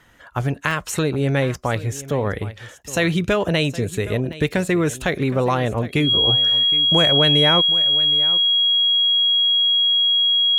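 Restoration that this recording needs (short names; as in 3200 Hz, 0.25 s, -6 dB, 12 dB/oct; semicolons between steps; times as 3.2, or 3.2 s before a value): notch 3300 Hz, Q 30; interpolate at 0.71/4.33, 1.5 ms; inverse comb 0.767 s -16.5 dB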